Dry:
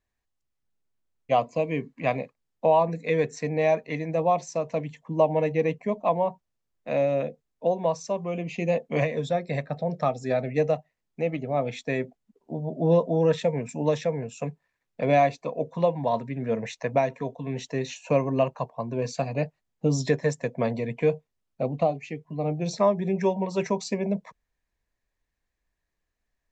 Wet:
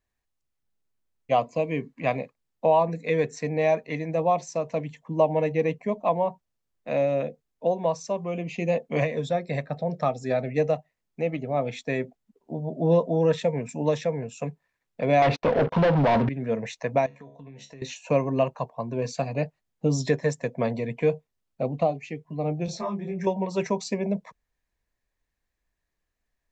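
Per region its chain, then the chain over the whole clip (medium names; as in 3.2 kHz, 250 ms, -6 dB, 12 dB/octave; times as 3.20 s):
15.22–16.29 s: waveshaping leveller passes 5 + compression 4:1, threshold -19 dBFS + Gaussian low-pass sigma 2.1 samples
17.06–17.82 s: feedback comb 70 Hz, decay 0.24 s, mix 80% + compression 12:1, threshold -40 dBFS
22.66–23.27 s: comb 5.7 ms, depth 84% + compression 2:1, threshold -25 dBFS + detune thickener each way 27 cents
whole clip: none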